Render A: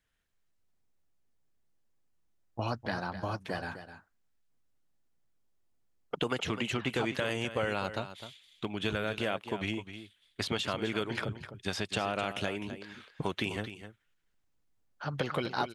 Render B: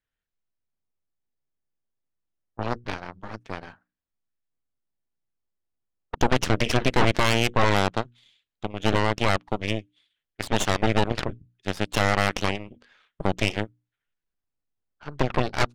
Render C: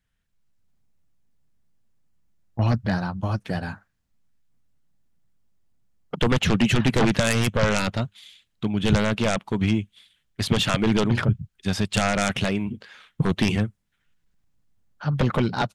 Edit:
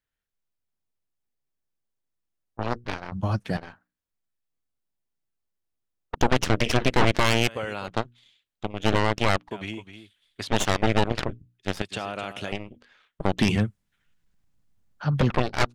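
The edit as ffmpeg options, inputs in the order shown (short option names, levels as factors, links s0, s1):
-filter_complex "[2:a]asplit=2[s0][s1];[0:a]asplit=3[s2][s3][s4];[1:a]asplit=6[s5][s6][s7][s8][s9][s10];[s5]atrim=end=3.122[s11];[s0]atrim=start=3.118:end=3.572[s12];[s6]atrim=start=3.568:end=7.482[s13];[s2]atrim=start=7.478:end=7.882[s14];[s7]atrim=start=7.878:end=9.512[s15];[s3]atrim=start=9.508:end=10.482[s16];[s8]atrim=start=10.478:end=11.822[s17];[s4]atrim=start=11.818:end=12.522[s18];[s9]atrim=start=12.518:end=13.392[s19];[s1]atrim=start=13.388:end=15.302[s20];[s10]atrim=start=15.298[s21];[s11][s12]acrossfade=d=0.004:c1=hsin:c2=hsin[s22];[s22][s13]acrossfade=d=0.004:c1=hsin:c2=hsin[s23];[s23][s14]acrossfade=d=0.004:c1=hsin:c2=hsin[s24];[s24][s15]acrossfade=d=0.004:c1=hsin:c2=hsin[s25];[s25][s16]acrossfade=d=0.004:c1=hsin:c2=hsin[s26];[s26][s17]acrossfade=d=0.004:c1=hsin:c2=hsin[s27];[s27][s18]acrossfade=d=0.004:c1=hsin:c2=hsin[s28];[s28][s19]acrossfade=d=0.004:c1=hsin:c2=hsin[s29];[s29][s20]acrossfade=d=0.004:c1=hsin:c2=hsin[s30];[s30][s21]acrossfade=d=0.004:c1=hsin:c2=hsin"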